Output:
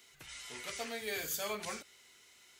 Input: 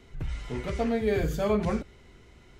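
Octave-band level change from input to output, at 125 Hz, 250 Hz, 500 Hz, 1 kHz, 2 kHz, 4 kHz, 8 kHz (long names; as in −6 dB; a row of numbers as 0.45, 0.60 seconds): −26.0, −21.0, −15.0, −9.0, −2.5, +2.5, +8.0 decibels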